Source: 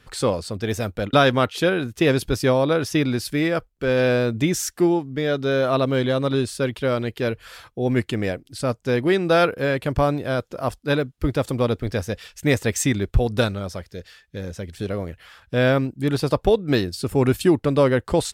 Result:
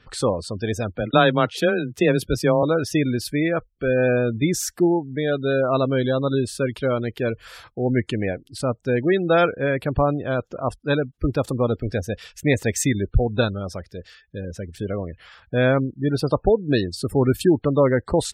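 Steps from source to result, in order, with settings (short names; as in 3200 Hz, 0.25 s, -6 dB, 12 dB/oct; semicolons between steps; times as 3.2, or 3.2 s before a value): spectral gate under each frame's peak -25 dB strong; 0.96–2.63 frequency shift +16 Hz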